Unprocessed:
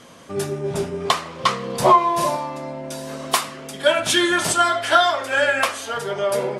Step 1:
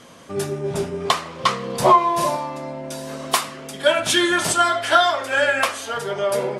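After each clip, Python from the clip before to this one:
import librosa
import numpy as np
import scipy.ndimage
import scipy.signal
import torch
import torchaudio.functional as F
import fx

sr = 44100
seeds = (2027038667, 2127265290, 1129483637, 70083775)

y = x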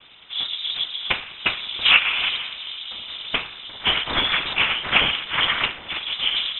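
y = np.maximum(x, 0.0)
y = fx.noise_vocoder(y, sr, seeds[0], bands=8)
y = fx.freq_invert(y, sr, carrier_hz=3800)
y = y * librosa.db_to_amplitude(3.0)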